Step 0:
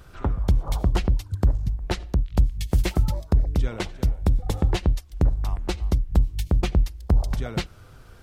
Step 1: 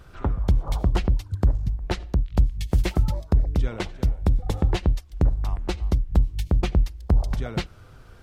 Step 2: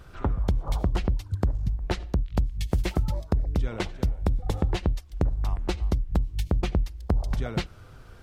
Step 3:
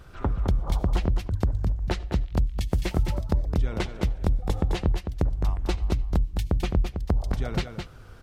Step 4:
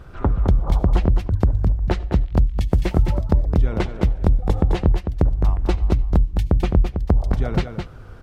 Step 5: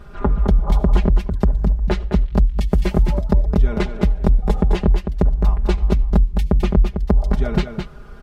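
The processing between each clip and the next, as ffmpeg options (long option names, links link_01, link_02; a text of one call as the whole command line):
ffmpeg -i in.wav -af "highshelf=frequency=6300:gain=-6" out.wav
ffmpeg -i in.wav -af "acompressor=threshold=-20dB:ratio=5" out.wav
ffmpeg -i in.wav -af "aecho=1:1:212:0.447" out.wav
ffmpeg -i in.wav -af "highshelf=frequency=2300:gain=-10,volume=7dB" out.wav
ffmpeg -i in.wav -af "aecho=1:1:4.9:0.79" out.wav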